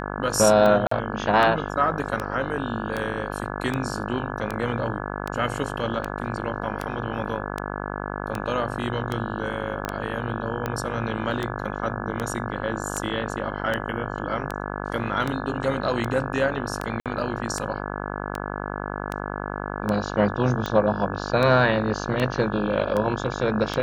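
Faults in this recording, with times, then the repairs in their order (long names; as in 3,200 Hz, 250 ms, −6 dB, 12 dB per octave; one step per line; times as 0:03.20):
mains buzz 50 Hz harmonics 34 −31 dBFS
scratch tick 78 rpm −13 dBFS
0:00.87–0:00.91: drop-out 44 ms
0:09.85: click −13 dBFS
0:17.00–0:17.06: drop-out 57 ms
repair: click removal
hum removal 50 Hz, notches 34
repair the gap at 0:00.87, 44 ms
repair the gap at 0:17.00, 57 ms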